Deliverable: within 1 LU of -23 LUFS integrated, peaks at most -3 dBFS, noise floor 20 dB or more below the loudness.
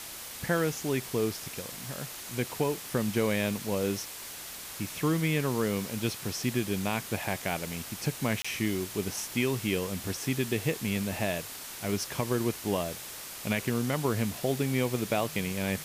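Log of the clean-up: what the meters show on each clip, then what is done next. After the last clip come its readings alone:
dropouts 1; longest dropout 25 ms; noise floor -42 dBFS; noise floor target -51 dBFS; loudness -31.0 LUFS; peak level -15.5 dBFS; loudness target -23.0 LUFS
-> interpolate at 8.42 s, 25 ms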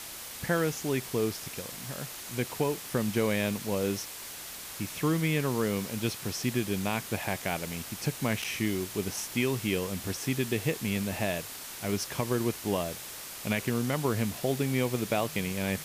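dropouts 0; noise floor -42 dBFS; noise floor target -51 dBFS
-> noise print and reduce 9 dB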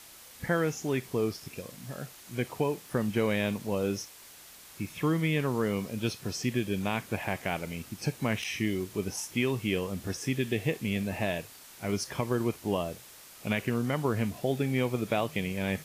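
noise floor -51 dBFS; noise floor target -52 dBFS
-> noise print and reduce 6 dB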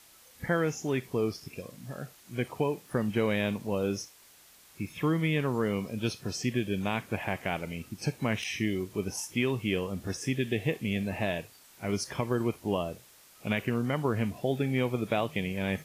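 noise floor -57 dBFS; loudness -31.5 LUFS; peak level -16.0 dBFS; loudness target -23.0 LUFS
-> trim +8.5 dB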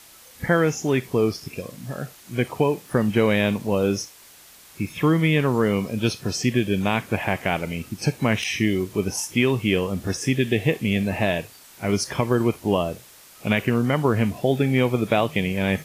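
loudness -23.0 LUFS; peak level -7.5 dBFS; noise floor -49 dBFS

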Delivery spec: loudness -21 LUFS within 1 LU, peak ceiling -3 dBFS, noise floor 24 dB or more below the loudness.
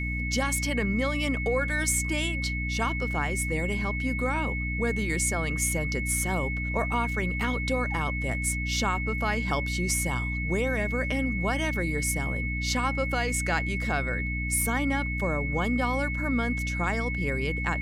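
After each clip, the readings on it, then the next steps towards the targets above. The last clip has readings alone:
hum 60 Hz; highest harmonic 300 Hz; hum level -29 dBFS; steady tone 2.2 kHz; tone level -32 dBFS; loudness -27.5 LUFS; peak level -11.5 dBFS; loudness target -21.0 LUFS
-> hum notches 60/120/180/240/300 Hz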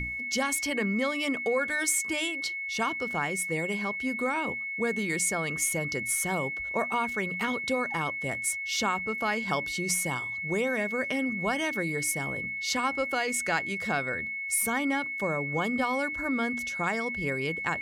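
hum not found; steady tone 2.2 kHz; tone level -32 dBFS
-> band-stop 2.2 kHz, Q 30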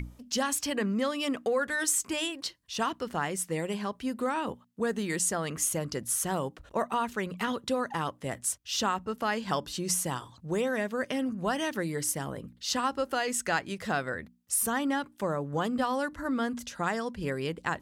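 steady tone not found; loudness -31.0 LUFS; peak level -14.5 dBFS; loudness target -21.0 LUFS
-> trim +10 dB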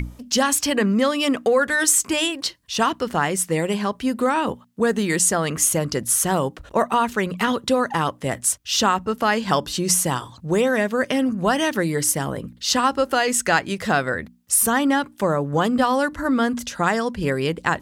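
loudness -21.0 LUFS; peak level -4.5 dBFS; noise floor -49 dBFS

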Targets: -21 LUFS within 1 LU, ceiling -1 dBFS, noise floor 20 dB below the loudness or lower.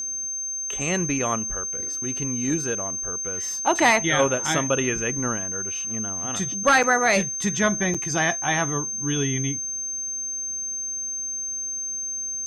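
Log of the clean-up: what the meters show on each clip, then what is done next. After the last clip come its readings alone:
dropouts 2; longest dropout 5.9 ms; steady tone 6.3 kHz; tone level -27 dBFS; loudness -23.5 LUFS; peak level -8.0 dBFS; loudness target -21.0 LUFS
-> interpolate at 6.83/7.94 s, 5.9 ms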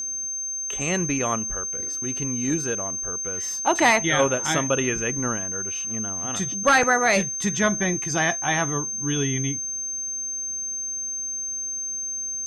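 dropouts 0; steady tone 6.3 kHz; tone level -27 dBFS
-> band-stop 6.3 kHz, Q 30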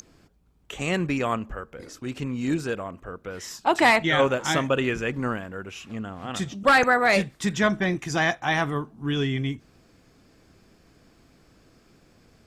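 steady tone not found; loudness -24.0 LUFS; peak level -8.0 dBFS; loudness target -21.0 LUFS
-> trim +3 dB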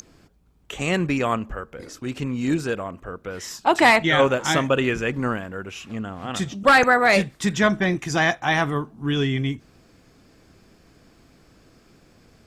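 loudness -21.0 LUFS; peak level -5.0 dBFS; noise floor -56 dBFS

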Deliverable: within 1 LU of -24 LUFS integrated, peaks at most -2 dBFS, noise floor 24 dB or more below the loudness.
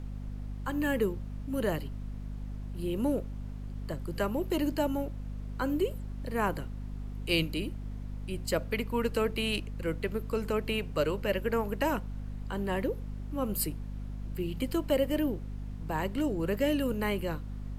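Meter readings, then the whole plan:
hum 50 Hz; highest harmonic 250 Hz; hum level -36 dBFS; noise floor -40 dBFS; noise floor target -57 dBFS; loudness -33.0 LUFS; peak level -14.0 dBFS; loudness target -24.0 LUFS
-> hum notches 50/100/150/200/250 Hz; noise print and reduce 17 dB; trim +9 dB

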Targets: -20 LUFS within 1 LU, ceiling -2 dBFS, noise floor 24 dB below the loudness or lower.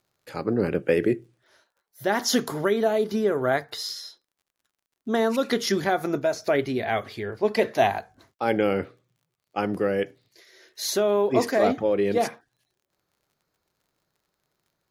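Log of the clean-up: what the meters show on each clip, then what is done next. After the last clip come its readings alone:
tick rate 34 per s; loudness -25.0 LUFS; peak level -7.5 dBFS; loudness target -20.0 LUFS
-> de-click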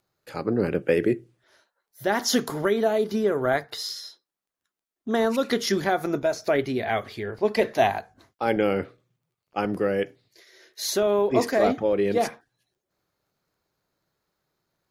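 tick rate 0.20 per s; loudness -25.0 LUFS; peak level -7.5 dBFS; loudness target -20.0 LUFS
-> trim +5 dB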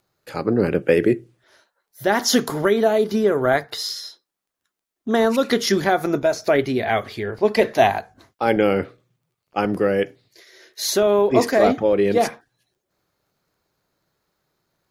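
loudness -20.0 LUFS; peak level -2.5 dBFS; noise floor -82 dBFS

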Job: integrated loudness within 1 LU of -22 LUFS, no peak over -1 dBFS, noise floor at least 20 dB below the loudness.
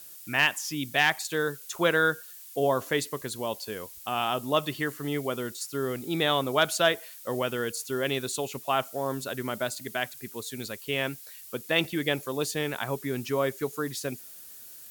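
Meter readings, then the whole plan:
noise floor -47 dBFS; noise floor target -49 dBFS; loudness -29.0 LUFS; peak level -10.5 dBFS; loudness target -22.0 LUFS
-> noise reduction 6 dB, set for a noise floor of -47 dBFS; trim +7 dB

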